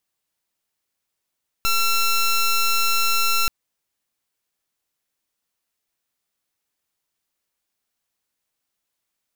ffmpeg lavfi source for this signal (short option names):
-f lavfi -i "aevalsrc='0.119*(2*lt(mod(1350*t,1),0.14)-1)':d=1.83:s=44100"